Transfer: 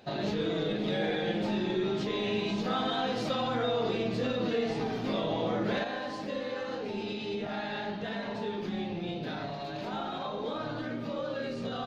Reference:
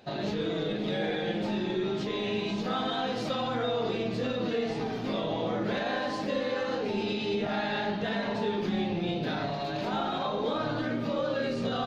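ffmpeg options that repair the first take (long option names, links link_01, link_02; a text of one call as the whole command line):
ffmpeg -i in.wav -af "asetnsamples=nb_out_samples=441:pad=0,asendcmd='5.84 volume volume 5dB',volume=0dB" out.wav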